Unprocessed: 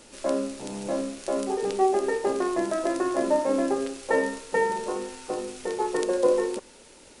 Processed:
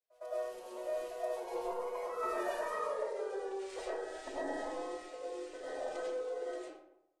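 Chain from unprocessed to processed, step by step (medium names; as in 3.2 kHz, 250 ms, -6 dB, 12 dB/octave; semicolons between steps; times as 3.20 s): Doppler pass-by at 2.90 s, 45 m/s, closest 13 m; expander -55 dBFS; tone controls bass -14 dB, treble -6 dB; compression 16:1, threshold -44 dBFS, peak gain reduction 25.5 dB; formant-preserving pitch shift +8 st; on a send: reverse echo 109 ms -20.5 dB; on the sum: algorithmic reverb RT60 0.83 s, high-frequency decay 0.5×, pre-delay 60 ms, DRR -7.5 dB; trim +2 dB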